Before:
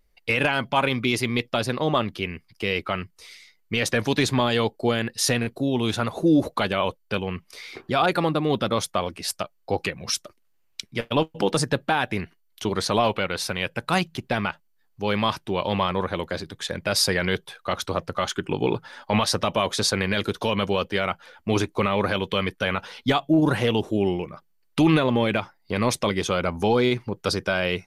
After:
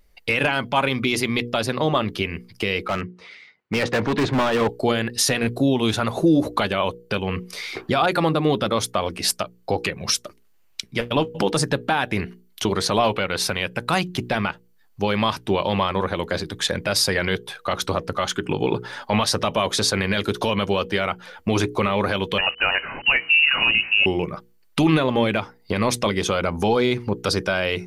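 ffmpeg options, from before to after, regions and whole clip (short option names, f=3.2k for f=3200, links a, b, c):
-filter_complex "[0:a]asettb=1/sr,asplit=3[a][b][c];[a]atrim=end=2.884[d];[b]atrim=start=2.88:end=4.69,asetpts=PTS-STARTPTS,afade=t=in:d=0.004:c=qsin,afade=t=out:st=1.806:d=0.004:c=qsin,highpass=110,lowpass=2.2k,volume=24dB,asoftclip=hard,volume=-24dB[e];[c]atrim=start=4.686[f];[d][e]acrossfade=d=0.004:c1=hsin:c2=qsin[g];[g][f]acrossfade=d=0.004:c1=qsin:c2=hsin,asettb=1/sr,asplit=3[h][i][j];[h]atrim=end=22.384[k];[i]atrim=start=22.38:end=24.06,asetpts=PTS-STARTPTS,afade=t=in:d=0.004:c=qsin,afade=t=out:st=1.676:d=0.004:c=qsin,aeval=exprs='val(0)+0.5*0.0126*sgn(val(0))':c=same,lowpass=f=2.6k:t=q:w=0.5098,lowpass=f=2.6k:t=q:w=0.6013,lowpass=f=2.6k:t=q:w=0.9,lowpass=f=2.6k:t=q:w=2.563,afreqshift=-3000,lowshelf=f=330:g=6[l];[j]atrim=start=24.056[m];[k][l]acrossfade=d=0.004:c1=hsin:c2=qsin[n];[n][m]acrossfade=d=0.004:c1=qsin:c2=hsin,bandreject=f=60:t=h:w=6,bandreject=f=120:t=h:w=6,bandreject=f=180:t=h:w=6,bandreject=f=240:t=h:w=6,bandreject=f=300:t=h:w=6,bandreject=f=360:t=h:w=6,bandreject=f=420:t=h:w=6,bandreject=f=480:t=h:w=6,alimiter=limit=-17dB:level=0:latency=1:release=258,volume=8dB"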